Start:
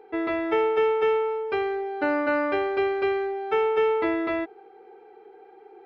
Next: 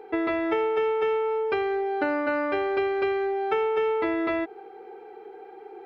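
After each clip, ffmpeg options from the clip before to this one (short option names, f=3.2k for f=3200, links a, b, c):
-af "acompressor=threshold=-29dB:ratio=4,volume=5.5dB"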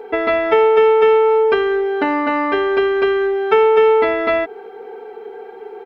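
-af "aecho=1:1:4.4:0.7,volume=8.5dB"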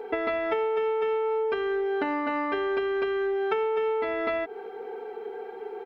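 -af "acompressor=threshold=-21dB:ratio=6,volume=-4dB"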